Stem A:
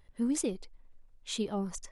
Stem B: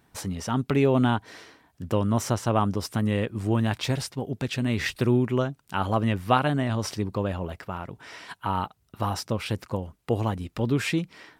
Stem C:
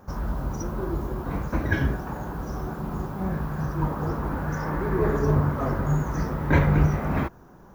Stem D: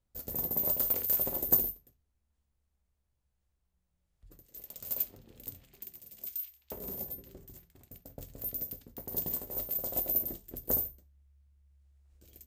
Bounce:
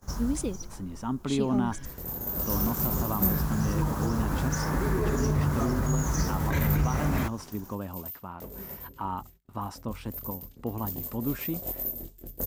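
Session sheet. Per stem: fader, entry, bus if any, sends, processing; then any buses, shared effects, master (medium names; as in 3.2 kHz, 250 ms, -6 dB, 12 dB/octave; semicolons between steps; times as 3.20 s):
-1.5 dB, 0.00 s, no bus, no send, none
-16.0 dB, 0.55 s, bus A, no send, graphic EQ 250/1000/4000/8000 Hz +10/+11/-5/-9 dB
-4.0 dB, 0.00 s, bus A, no send, treble shelf 2.5 kHz +8 dB; auto duck -21 dB, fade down 0.85 s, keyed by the first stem
+1.0 dB, 1.70 s, no bus, no send, chorus voices 2, 1.4 Hz, delay 23 ms, depth 3 ms
bus A: 0.0 dB, peaking EQ 7.8 kHz +14.5 dB 1.6 oct; peak limiter -20.5 dBFS, peak gain reduction 10.5 dB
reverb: none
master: gate -55 dBFS, range -19 dB; bass shelf 210 Hz +6.5 dB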